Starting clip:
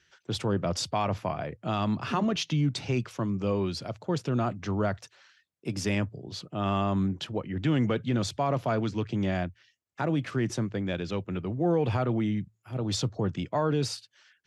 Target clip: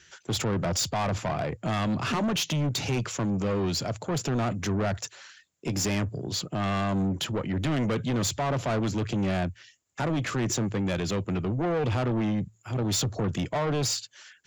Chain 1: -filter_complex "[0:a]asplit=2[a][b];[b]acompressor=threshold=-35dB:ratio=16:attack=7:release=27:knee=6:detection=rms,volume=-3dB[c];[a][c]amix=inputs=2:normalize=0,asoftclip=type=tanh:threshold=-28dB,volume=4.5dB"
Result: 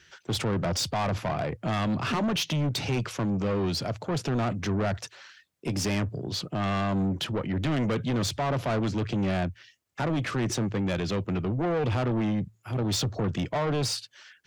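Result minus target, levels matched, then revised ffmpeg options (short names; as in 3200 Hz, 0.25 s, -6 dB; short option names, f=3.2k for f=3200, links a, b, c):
8000 Hz band -4.5 dB
-filter_complex "[0:a]asplit=2[a][b];[b]acompressor=threshold=-35dB:ratio=16:attack=7:release=27:knee=6:detection=rms,lowpass=f=7.2k:t=q:w=13,volume=-3dB[c];[a][c]amix=inputs=2:normalize=0,asoftclip=type=tanh:threshold=-28dB,volume=4.5dB"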